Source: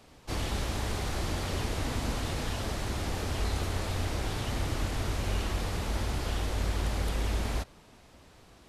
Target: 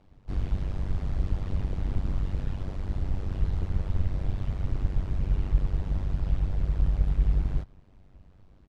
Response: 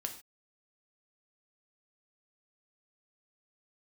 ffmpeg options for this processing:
-filter_complex "[0:a]asplit=2[a][b];[b]asetrate=35002,aresample=44100,atempo=1.25992,volume=-5dB[c];[a][c]amix=inputs=2:normalize=0,tremolo=f=96:d=0.919,aemphasis=mode=reproduction:type=riaa,volume=-7.5dB"

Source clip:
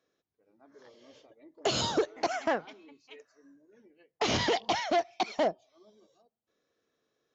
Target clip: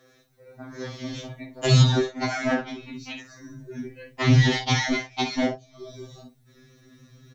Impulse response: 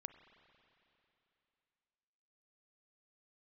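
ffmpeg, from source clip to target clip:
-filter_complex "[0:a]equalizer=f=390:t=o:w=1.5:g=-2.5,aecho=1:1:16|57:0.631|0.335,acompressor=threshold=-52dB:ratio=2,asubboost=boost=9.5:cutoff=190,asettb=1/sr,asplit=3[a][b][c];[a]atrim=end=1.824[d];[b]atrim=start=1.82:end=4.34,asetpts=PTS-STARTPTS,afade=t=in:d=0.004:c=qsin,afade=t=out:st=2.516:d=0.004:c=qsin,acrossover=split=3500[e][f];[f]acompressor=threshold=-58dB:ratio=4:attack=1:release=60[g];[e][g]amix=inputs=2:normalize=0[h];[c]atrim=start=4.336[i];[d][h]acrossfade=d=0.004:c1=hsin:c2=qsin[j];[j][i]acrossfade=d=0.004:c1=qsin:c2=hsin,alimiter=level_in=30dB:limit=-1dB:release=50:level=0:latency=1,afftfilt=real='re*2.45*eq(mod(b,6),0)':imag='im*2.45*eq(mod(b,6),0)':win_size=2048:overlap=0.75,volume=-7.5dB"

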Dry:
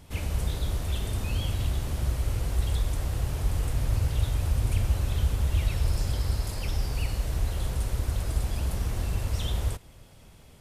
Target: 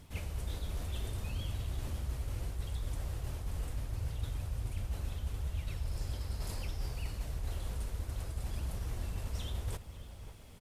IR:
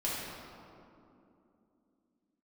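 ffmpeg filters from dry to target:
-filter_complex "[0:a]acrusher=bits=11:mix=0:aa=0.000001,flanger=delay=0.5:depth=4.3:regen=-68:speed=0.7:shape=triangular,areverse,acompressor=threshold=-36dB:ratio=6,areverse,asplit=2[a][b];[b]adelay=548.1,volume=-12dB,highshelf=f=4k:g=-12.3[c];[a][c]amix=inputs=2:normalize=0,volume=2dB"

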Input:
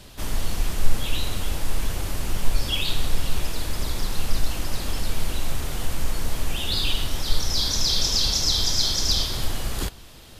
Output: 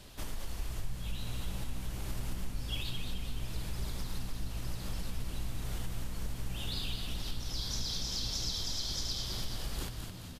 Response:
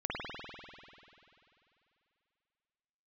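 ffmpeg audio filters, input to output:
-filter_complex "[0:a]acompressor=threshold=-27dB:ratio=5,asplit=8[a][b][c][d][e][f][g][h];[b]adelay=214,afreqshift=-64,volume=-6dB[i];[c]adelay=428,afreqshift=-128,volume=-11.4dB[j];[d]adelay=642,afreqshift=-192,volume=-16.7dB[k];[e]adelay=856,afreqshift=-256,volume=-22.1dB[l];[f]adelay=1070,afreqshift=-320,volume=-27.4dB[m];[g]adelay=1284,afreqshift=-384,volume=-32.8dB[n];[h]adelay=1498,afreqshift=-448,volume=-38.1dB[o];[a][i][j][k][l][m][n][o]amix=inputs=8:normalize=0,volume=-7dB"

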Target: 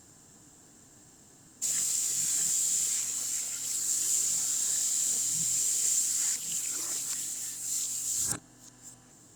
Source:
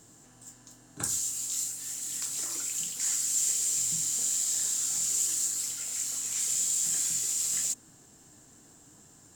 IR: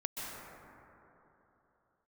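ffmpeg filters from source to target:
-af "areverse" -ar 48000 -c:a libopus -b:a 64k

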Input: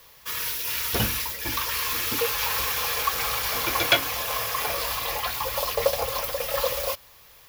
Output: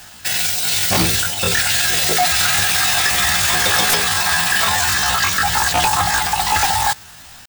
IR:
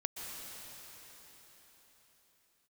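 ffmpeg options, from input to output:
-af "aeval=exprs='0.596*sin(PI/2*6.31*val(0)/0.596)':c=same,asetrate=68011,aresample=44100,atempo=0.64842,volume=-5.5dB"

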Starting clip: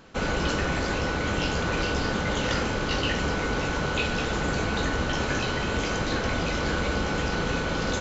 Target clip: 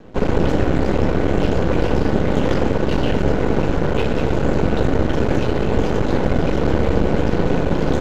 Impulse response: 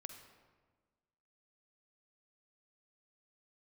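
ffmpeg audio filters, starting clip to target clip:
-filter_complex "[0:a]lowshelf=f=650:t=q:w=1.5:g=10,aeval=exprs='max(val(0),0)':c=same,asplit=2[a][b];[1:a]atrim=start_sample=2205,asetrate=61740,aresample=44100,lowpass=3.6k[c];[b][c]afir=irnorm=-1:irlink=0,volume=7dB[d];[a][d]amix=inputs=2:normalize=0,volume=-1.5dB"

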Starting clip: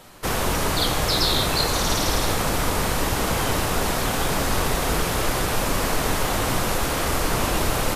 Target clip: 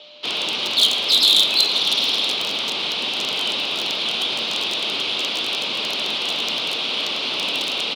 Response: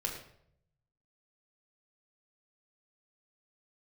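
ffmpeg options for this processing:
-filter_complex "[0:a]aeval=exprs='val(0)+0.01*sin(2*PI*650*n/s)':c=same,highpass=f=260:t=q:w=0.5412,highpass=f=260:t=q:w=1.307,lowpass=f=3.6k:t=q:w=0.5176,lowpass=f=3.6k:t=q:w=0.7071,lowpass=f=3.6k:t=q:w=1.932,afreqshift=-52,aeval=exprs='0.15*(abs(mod(val(0)/0.15+3,4)-2)-1)':c=same,asplit=2[a][b];[b]aecho=0:1:112:0.0891[c];[a][c]amix=inputs=2:normalize=0,aexciter=amount=9.3:drive=9.4:freq=2.8k,volume=-7dB"

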